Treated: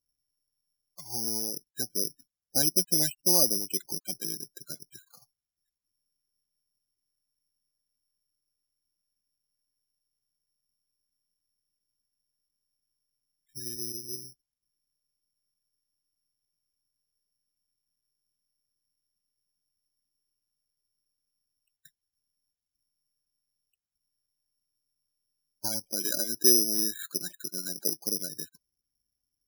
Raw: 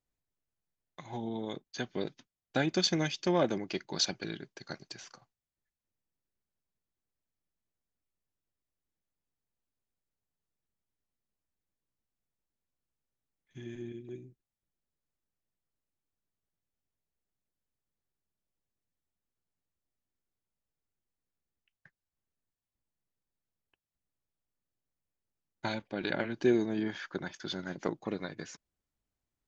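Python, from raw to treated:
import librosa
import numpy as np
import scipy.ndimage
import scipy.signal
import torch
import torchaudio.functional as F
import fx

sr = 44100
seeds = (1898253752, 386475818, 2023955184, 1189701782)

y = fx.highpass(x, sr, hz=150.0, slope=12, at=(25.96, 28.02))
y = fx.spec_topn(y, sr, count=16)
y = (np.kron(scipy.signal.resample_poly(y, 1, 8), np.eye(8)[0]) * 8)[:len(y)]
y = y * librosa.db_to_amplitude(-3.5)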